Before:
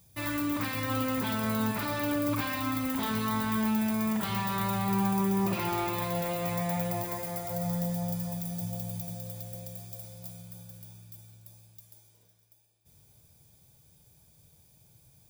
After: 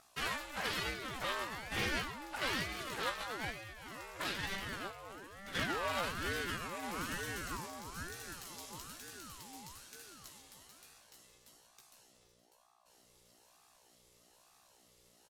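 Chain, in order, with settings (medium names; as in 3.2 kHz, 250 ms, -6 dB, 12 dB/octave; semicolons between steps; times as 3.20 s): partial rectifier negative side -3 dB; hum 60 Hz, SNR 10 dB; compressor with a negative ratio -33 dBFS, ratio -0.5; band-pass 710–8000 Hz; doubling 15 ms -5 dB; ring modulator with a swept carrier 620 Hz, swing 60%, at 1.1 Hz; trim +3 dB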